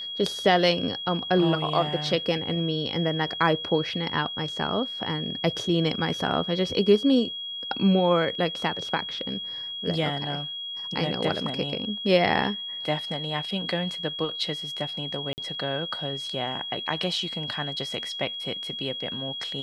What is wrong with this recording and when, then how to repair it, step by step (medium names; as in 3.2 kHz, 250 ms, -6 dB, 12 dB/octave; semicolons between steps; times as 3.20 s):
whine 3.3 kHz -32 dBFS
15.33–15.38 s: dropout 49 ms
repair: band-stop 3.3 kHz, Q 30; interpolate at 15.33 s, 49 ms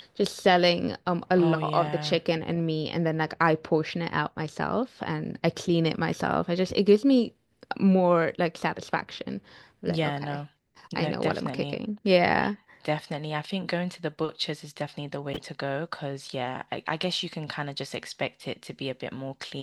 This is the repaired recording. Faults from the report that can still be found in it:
nothing left